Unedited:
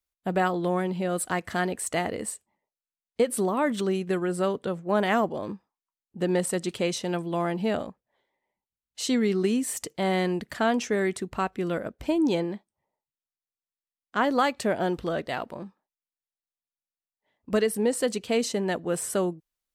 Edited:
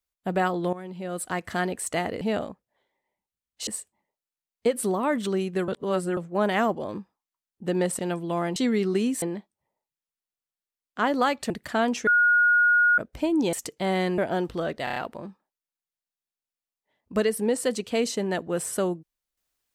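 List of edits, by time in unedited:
0.73–1.49 fade in, from -15 dB
4.22–4.71 reverse
6.53–7.02 cut
7.59–9.05 move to 2.21
9.71–10.36 swap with 12.39–14.67
10.93–11.84 bleep 1440 Hz -16 dBFS
15.33 stutter 0.03 s, 5 plays

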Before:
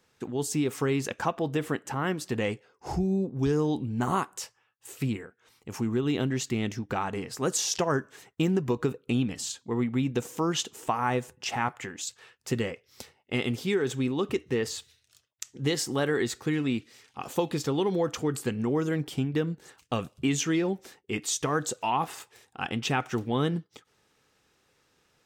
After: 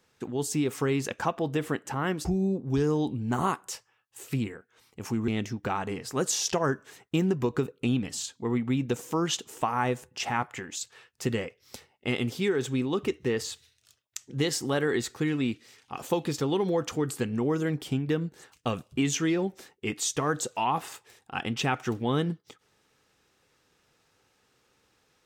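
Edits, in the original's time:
2.25–2.94 cut
5.97–6.54 cut

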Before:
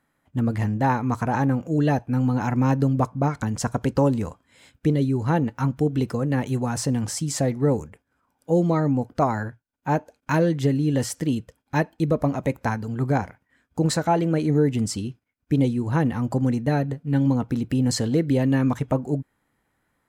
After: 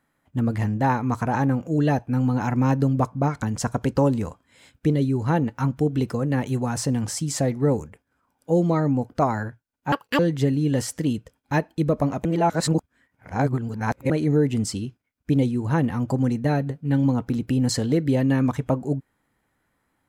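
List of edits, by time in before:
9.92–10.41 speed 182%
12.47–14.32 reverse

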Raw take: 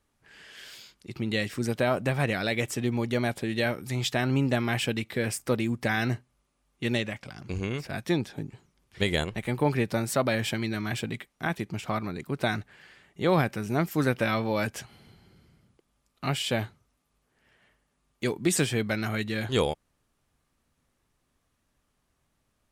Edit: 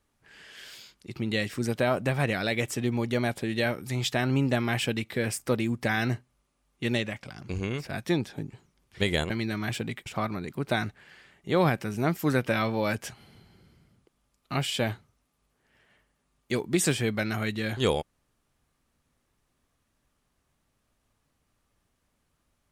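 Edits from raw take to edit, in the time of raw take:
9.3–10.53 cut
11.29–11.78 cut

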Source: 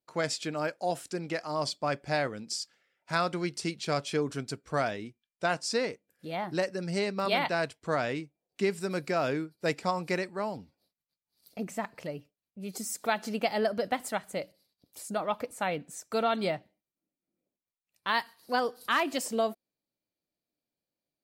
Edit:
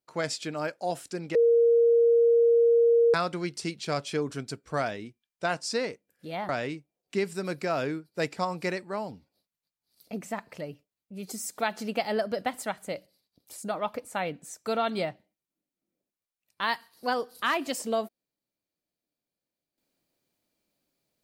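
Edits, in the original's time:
1.35–3.14 bleep 467 Hz -17 dBFS
6.49–7.95 cut

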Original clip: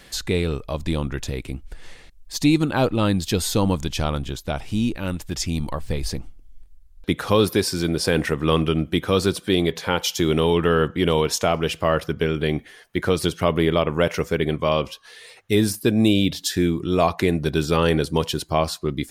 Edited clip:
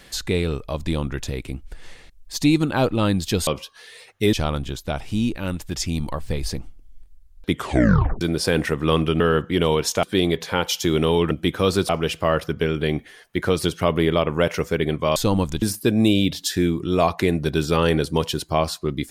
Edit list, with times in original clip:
3.47–3.93 swap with 14.76–15.62
7.12 tape stop 0.69 s
8.8–9.38 swap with 10.66–11.49

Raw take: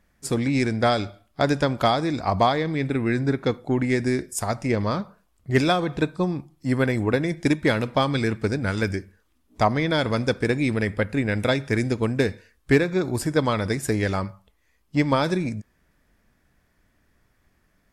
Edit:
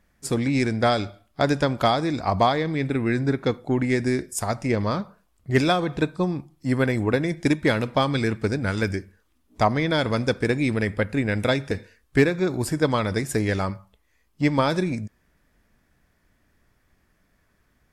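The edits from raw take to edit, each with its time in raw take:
11.71–12.25 cut

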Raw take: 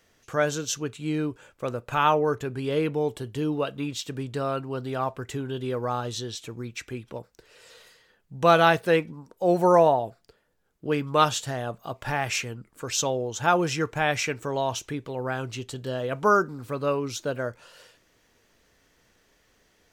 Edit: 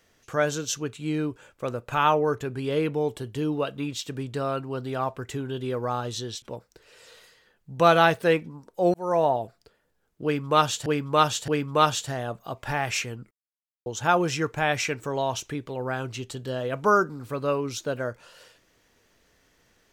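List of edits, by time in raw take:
6.42–7.05 cut
9.57–9.98 fade in
10.87–11.49 loop, 3 plays
12.7–13.25 mute

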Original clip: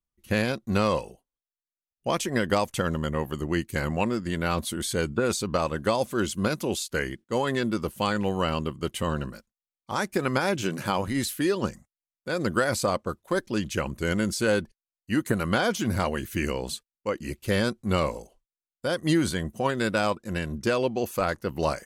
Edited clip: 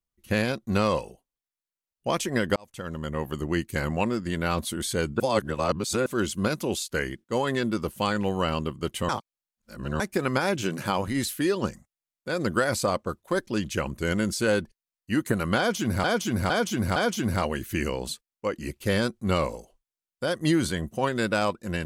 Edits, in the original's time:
2.56–3.33 fade in
5.2–6.06 reverse
9.09–10 reverse
15.58–16.04 loop, 4 plays

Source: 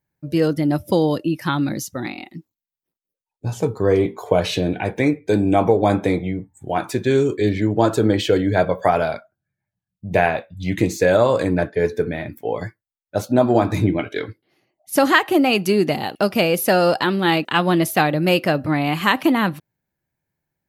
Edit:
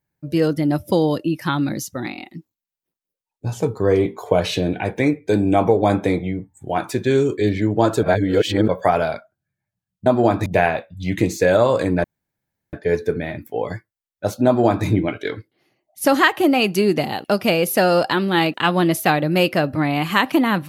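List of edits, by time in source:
8.03–8.68 reverse
11.64 insert room tone 0.69 s
13.37–13.77 copy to 10.06

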